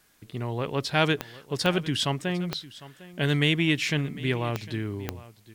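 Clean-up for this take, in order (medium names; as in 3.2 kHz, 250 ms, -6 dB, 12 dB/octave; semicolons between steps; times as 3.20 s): de-click; expander -43 dBFS, range -21 dB; inverse comb 753 ms -18.5 dB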